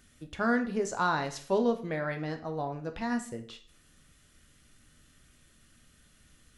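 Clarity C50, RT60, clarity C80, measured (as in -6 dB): 11.5 dB, 0.45 s, 17.0 dB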